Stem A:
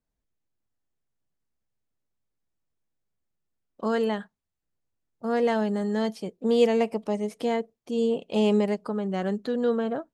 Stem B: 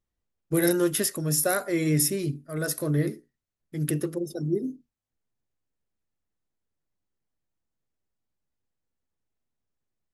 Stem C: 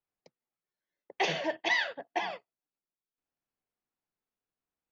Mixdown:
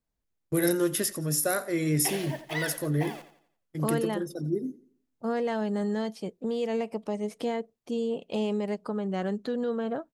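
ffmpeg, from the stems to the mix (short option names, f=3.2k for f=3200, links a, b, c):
-filter_complex "[0:a]alimiter=limit=-21.5dB:level=0:latency=1:release=253,volume=-0.5dB[a];[1:a]agate=range=-25dB:threshold=-38dB:ratio=16:detection=peak,volume=-2.5dB,asplit=2[b][c];[c]volume=-18.5dB[d];[2:a]acrusher=bits=8:dc=4:mix=0:aa=0.000001,adelay=850,volume=-6dB,asplit=2[e][f];[f]volume=-12.5dB[g];[d][g]amix=inputs=2:normalize=0,aecho=0:1:87|174|261|348|435:1|0.38|0.144|0.0549|0.0209[h];[a][b][e][h]amix=inputs=4:normalize=0"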